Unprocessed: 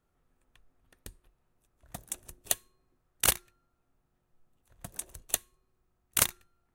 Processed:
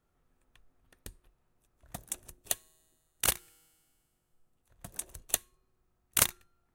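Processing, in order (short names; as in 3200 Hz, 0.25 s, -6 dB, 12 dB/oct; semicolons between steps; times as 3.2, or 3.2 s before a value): 2.29–4.86 resonator 160 Hz, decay 2 s, mix 30%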